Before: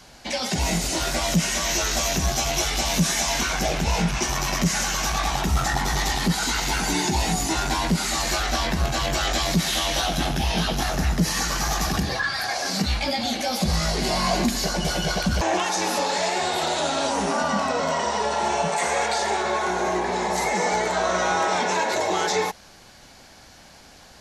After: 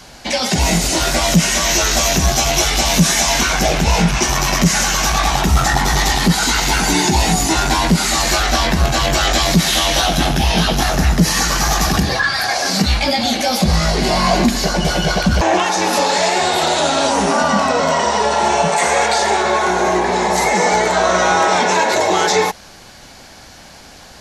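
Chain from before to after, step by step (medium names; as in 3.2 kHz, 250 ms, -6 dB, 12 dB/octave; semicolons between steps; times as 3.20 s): 13.61–15.93 s: treble shelf 5.2 kHz -6 dB; trim +8.5 dB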